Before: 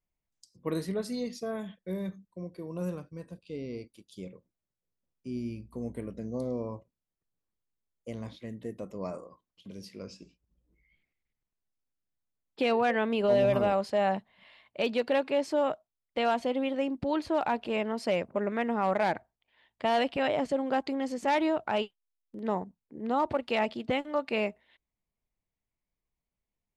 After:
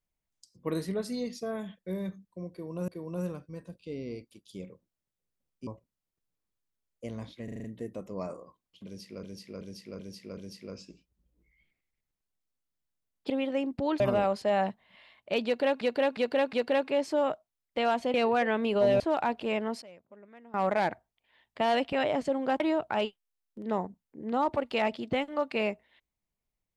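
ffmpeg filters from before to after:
-filter_complex "[0:a]asplit=22[s0][s1][s2][s3][s4][s5][s6][s7][s8][s9][s10][s11][s12][s13][s14][s15][s16][s17][s18][s19][s20][s21];[s0]atrim=end=2.882[s22];[s1]atrim=start=2.508:end=5.302[s23];[s2]atrim=start=6.708:end=8.522[s24];[s3]atrim=start=8.478:end=8.522[s25];[s4]atrim=start=8.478:end=8.522[s26];[s5]atrim=start=8.478:end=8.522[s27];[s6]atrim=start=8.478:end=8.522[s28];[s7]atrim=start=8.478:end=10.072[s29];[s8]atrim=start=9.688:end=10.072[s30];[s9]atrim=start=9.688:end=10.072[s31];[s10]atrim=start=9.688:end=10.072[s32];[s11]atrim=start=9.688:end=12.622[s33];[s12]atrim=start=16.538:end=17.242[s34];[s13]atrim=start=13.478:end=15.292[s35];[s14]atrim=start=14.928:end=15.292[s36];[s15]atrim=start=14.928:end=15.292[s37];[s16]atrim=start=14.928:end=16.542[s38];[s17]atrim=start=12.618:end=13.482[s39];[s18]atrim=start=17.238:end=18.06,asetpts=PTS-STARTPTS,afade=t=out:st=0.682:d=0.14:c=log:silence=0.0749894[s40];[s19]atrim=start=18.06:end=18.78,asetpts=PTS-STARTPTS,volume=0.075[s41];[s20]atrim=start=18.78:end=20.842,asetpts=PTS-STARTPTS,afade=t=in:d=0.14:c=log:silence=0.0749894[s42];[s21]atrim=start=21.368[s43];[s22][s23]acrossfade=d=0.004:c1=hsin:c2=hsin[s44];[s44][s24]acrossfade=d=0.004:c1=hsin:c2=hsin[s45];[s45][s25]acrossfade=d=0.004:c1=hsin:c2=hsin[s46];[s46][s26]acrossfade=d=0.004:c1=hsin:c2=hsin[s47];[s47][s27]acrossfade=d=0.004:c1=hsin:c2=hsin[s48];[s48][s28]acrossfade=d=0.004:c1=hsin:c2=hsin[s49];[s49][s29]acrossfade=d=0.004:c1=hsin:c2=hsin[s50];[s50][s30]acrossfade=d=0.004:c1=hsin:c2=hsin[s51];[s51][s31]acrossfade=d=0.004:c1=hsin:c2=hsin[s52];[s52][s32]acrossfade=d=0.004:c1=hsin:c2=hsin[s53];[s53][s33]acrossfade=d=0.004:c1=hsin:c2=hsin[s54];[s54][s34]acrossfade=d=0.004:c1=hsin:c2=hsin[s55];[s55][s35]acrossfade=d=0.004:c1=hsin:c2=hsin[s56];[s56][s36]acrossfade=d=0.004:c1=hsin:c2=hsin[s57];[s57][s37]acrossfade=d=0.004:c1=hsin:c2=hsin[s58];[s58][s38]acrossfade=d=0.004:c1=hsin:c2=hsin[s59];[s59][s39]acrossfade=d=0.004:c1=hsin:c2=hsin[s60];[s40][s41][s42]concat=n=3:v=0:a=1[s61];[s60][s61]acrossfade=d=0.004:c1=hsin:c2=hsin[s62];[s62][s43]acrossfade=d=0.004:c1=hsin:c2=hsin"

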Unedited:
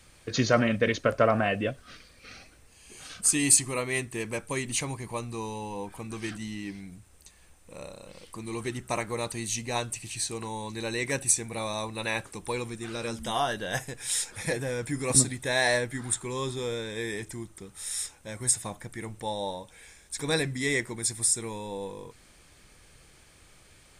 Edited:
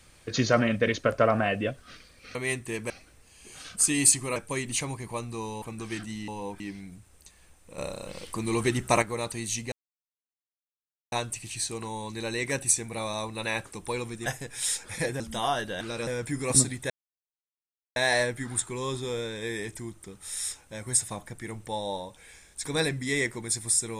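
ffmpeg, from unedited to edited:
-filter_complex "[0:a]asplit=15[s0][s1][s2][s3][s4][s5][s6][s7][s8][s9][s10][s11][s12][s13][s14];[s0]atrim=end=2.352[s15];[s1]atrim=start=3.808:end=4.362[s16];[s2]atrim=start=2.348:end=3.812[s17];[s3]atrim=start=4.358:end=5.622[s18];[s4]atrim=start=5.938:end=6.602[s19];[s5]atrim=start=5.618:end=5.942[s20];[s6]atrim=start=6.598:end=7.782[s21];[s7]atrim=start=7.778:end=9.022,asetpts=PTS-STARTPTS,volume=2.37[s22];[s8]atrim=start=9.018:end=9.72,asetpts=PTS-STARTPTS,afade=t=out:st=0.698:d=0.004:c=hsin,apad=pad_dur=1.4[s23];[s9]atrim=start=9.72:end=12.862,asetpts=PTS-STARTPTS,afade=t=in:d=0.004:c=hsin[s24];[s10]atrim=start=13.728:end=14.672[s25];[s11]atrim=start=13.118:end=13.732[s26];[s12]atrim=start=12.858:end=13.122[s27];[s13]atrim=start=14.668:end=15.5,asetpts=PTS-STARTPTS,afade=t=out:st=0.828:d=0.004:c=hsin,apad=pad_dur=1.06[s28];[s14]atrim=start=15.5,asetpts=PTS-STARTPTS,afade=t=in:d=0.004:c=hsin[s29];[s15][s16]acrossfade=d=0.004:c1=hsin:c2=hsin[s30];[s30][s17]acrossfade=d=0.004:c1=hsin:c2=hsin[s31];[s31][s18]acrossfade=d=0.004:c1=hsin:c2=hsin[s32];[s32][s19]acrossfade=d=0.004:c1=hsin:c2=hsin[s33];[s33][s20]acrossfade=d=0.004:c1=hsin:c2=hsin[s34];[s34][s21]acrossfade=d=0.004:c1=hsin:c2=hsin[s35];[s35][s22]acrossfade=d=0.004:c1=hsin:c2=hsin[s36];[s23][s24]concat=n=2:v=0:a=1[s37];[s36][s37]acrossfade=d=0.004:c1=hsin:c2=hsin[s38];[s38][s25]acrossfade=d=0.004:c1=hsin:c2=hsin[s39];[s39][s26]acrossfade=d=0.004:c1=hsin:c2=hsin[s40];[s40][s27]acrossfade=d=0.004:c1=hsin:c2=hsin[s41];[s28][s29]concat=n=2:v=0:a=1[s42];[s41][s42]acrossfade=d=0.004:c1=hsin:c2=hsin"

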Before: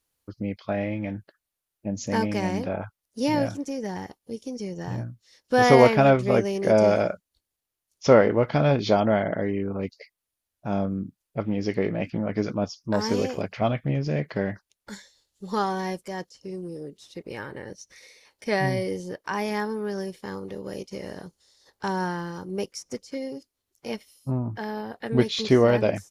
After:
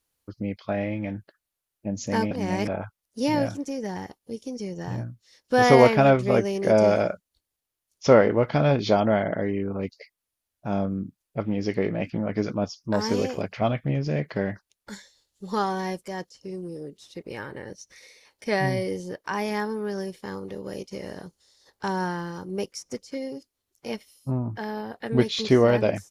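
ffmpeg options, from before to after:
-filter_complex "[0:a]asplit=3[s0][s1][s2];[s0]atrim=end=2.312[s3];[s1]atrim=start=2.308:end=2.682,asetpts=PTS-STARTPTS,areverse[s4];[s2]atrim=start=2.678[s5];[s3][s4]acrossfade=d=0.004:c1=hsin:c2=hsin[s6];[s6][s5]acrossfade=d=0.004:c1=hsin:c2=hsin"

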